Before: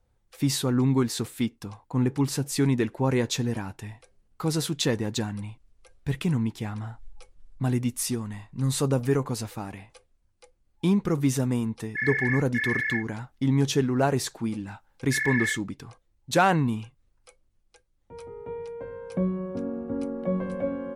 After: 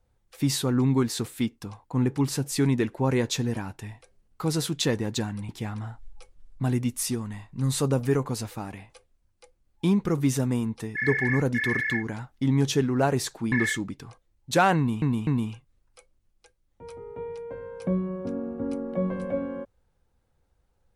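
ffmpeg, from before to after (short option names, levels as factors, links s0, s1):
-filter_complex "[0:a]asplit=5[s0][s1][s2][s3][s4];[s0]atrim=end=5.492[s5];[s1]atrim=start=6.488:end=14.522[s6];[s2]atrim=start=15.318:end=16.822[s7];[s3]atrim=start=16.568:end=16.822[s8];[s4]atrim=start=16.568[s9];[s5][s6]acrossfade=d=0.004:c1=hsin:c2=hsin[s10];[s10][s7]acrossfade=d=0.004:c1=hsin:c2=hsin[s11];[s11][s8]acrossfade=d=0.004:c1=hsin:c2=hsin[s12];[s12][s9]acrossfade=d=0.004:c1=hsin:c2=hsin"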